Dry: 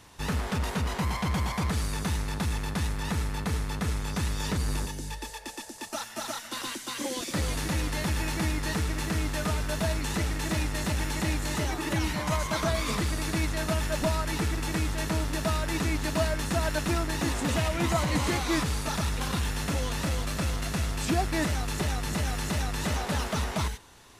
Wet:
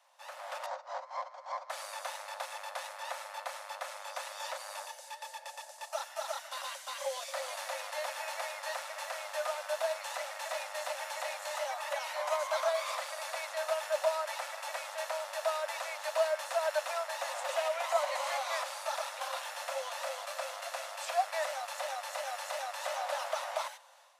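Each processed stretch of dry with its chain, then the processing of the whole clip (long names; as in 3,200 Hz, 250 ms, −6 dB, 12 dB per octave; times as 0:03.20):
0:00.66–0:01.70: inverse Chebyshev low-pass filter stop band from 12,000 Hz, stop band 50 dB + parametric band 2,800 Hz −13 dB 1.3 octaves + compressor whose output falls as the input rises −35 dBFS
whole clip: Chebyshev high-pass filter 530 Hz, order 10; tilt shelving filter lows +7 dB, about 830 Hz; automatic gain control gain up to 9 dB; level −9 dB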